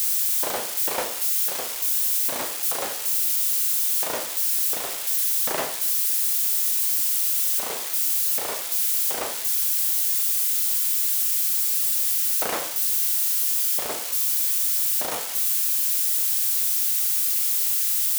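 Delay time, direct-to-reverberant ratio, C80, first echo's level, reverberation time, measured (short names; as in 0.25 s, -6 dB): none, 6.0 dB, 15.0 dB, none, 0.45 s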